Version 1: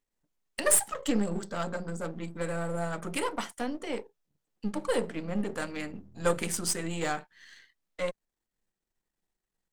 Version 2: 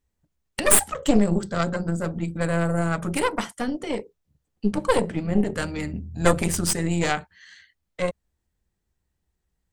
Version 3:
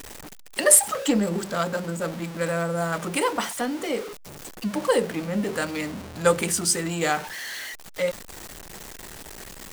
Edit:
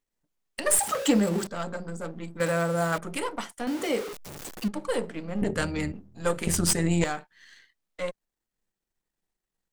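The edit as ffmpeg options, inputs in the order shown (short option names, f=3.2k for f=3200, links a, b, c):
-filter_complex "[2:a]asplit=3[a][b][c];[1:a]asplit=2[d][e];[0:a]asplit=6[f][g][h][i][j][k];[f]atrim=end=0.792[l];[a]atrim=start=0.788:end=1.472[m];[g]atrim=start=1.468:end=2.402[n];[b]atrim=start=2.398:end=2.982[o];[h]atrim=start=2.978:end=3.672[p];[c]atrim=start=3.668:end=4.682[q];[i]atrim=start=4.678:end=5.422[r];[d]atrim=start=5.418:end=5.922[s];[j]atrim=start=5.918:end=6.472[t];[e]atrim=start=6.468:end=7.042[u];[k]atrim=start=7.038[v];[l][m]acrossfade=d=0.004:c1=hsin:c2=hsin[w];[w][n]acrossfade=d=0.004:c1=hsin:c2=hsin[x];[x][o]acrossfade=d=0.004:c1=hsin:c2=hsin[y];[y][p]acrossfade=d=0.004:c1=hsin:c2=hsin[z];[z][q]acrossfade=d=0.004:c1=hsin:c2=hsin[aa];[aa][r]acrossfade=d=0.004:c1=hsin:c2=hsin[ab];[ab][s]acrossfade=d=0.004:c1=hsin:c2=hsin[ac];[ac][t]acrossfade=d=0.004:c1=hsin:c2=hsin[ad];[ad][u]acrossfade=d=0.004:c1=hsin:c2=hsin[ae];[ae][v]acrossfade=d=0.004:c1=hsin:c2=hsin"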